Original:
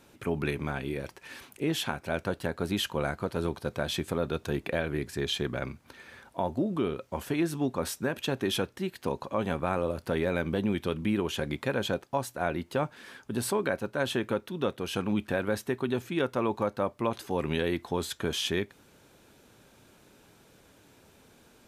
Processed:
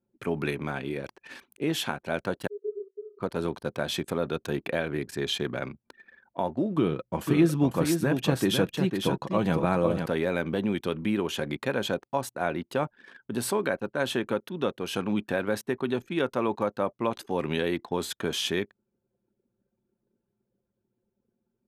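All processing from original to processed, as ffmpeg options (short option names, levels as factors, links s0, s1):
-filter_complex "[0:a]asettb=1/sr,asplit=3[s0][s1][s2];[s0]atrim=end=2.474[s3];[s1]atrim=start=2.47:end=3.19,asetpts=PTS-STARTPTS,afade=t=in:d=0.004:c=qsin,afade=t=out:st=0.716:d=0.004:c=qsin,aeval=exprs='0.0631*(abs(mod(val(0)/0.0631+3,4)-2)-1)':c=same,acontrast=64,asuperpass=centerf=410:order=20:qfactor=7.9[s4];[s2]atrim=start=3.186[s5];[s3][s4]acrossfade=d=0.004:c1=hsin:c2=qsin[s6];[s6][s5]acrossfade=d=0.004:c1=qsin:c2=hsin,asettb=1/sr,asplit=3[s7][s8][s9];[s7]atrim=end=6.774[s10];[s8]atrim=start=6.77:end=10.06,asetpts=PTS-STARTPTS,afade=t=in:d=0.004:c=qsin,afade=t=out:st=3.286:d=0.004:c=qsin,lowshelf=f=210:g=10.5,aecho=1:1:6.2:0.36,atrim=end_sample=145089,aecho=1:1:501:0.531,atrim=end_sample=145089[s11];[s9]atrim=start=10.056[s12];[s10][s11]acrossfade=d=0.004:c1=hsin:c2=qsin[s13];[s13][s12]acrossfade=d=0.004:c1=qsin:c2=hsin,highpass=130,anlmdn=0.0398,volume=1.19"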